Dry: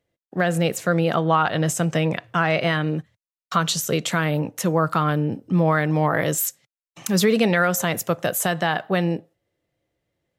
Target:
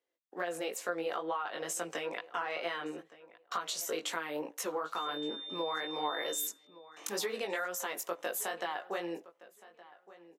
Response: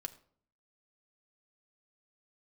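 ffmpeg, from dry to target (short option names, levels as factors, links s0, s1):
-filter_complex "[0:a]highpass=f=340:w=0.5412,highpass=f=340:w=1.3066,equalizer=f=1000:t=o:w=0.29:g=4.5,bandreject=f=620:w=12,acompressor=threshold=0.0631:ratio=6,flanger=delay=17:depth=3.7:speed=2.2,asettb=1/sr,asplit=3[s0][s1][s2];[s0]atrim=end=4.964[s3];[s1]atrim=start=4.96:end=6.47,asetpts=PTS-STARTPTS,afade=t=in:d=0.004:c=qsin,afade=t=out:st=1.506:d=0.004:c=qsin,aeval=exprs='val(0)+0.0158*sin(2*PI*3600*n/s)':c=same[s4];[s2]atrim=start=6.466[s5];[s3][s4]acrossfade=d=0.004:c1=hsin:c2=qsin[s6];[s6][s5]acrossfade=d=0.004:c1=qsin:c2=hsin,asplit=2[s7][s8];[s8]adelay=1168,lowpass=f=3100:p=1,volume=0.119,asplit=2[s9][s10];[s10]adelay=1168,lowpass=f=3100:p=1,volume=0.21[s11];[s7][s9][s11]amix=inputs=3:normalize=0,volume=0.562"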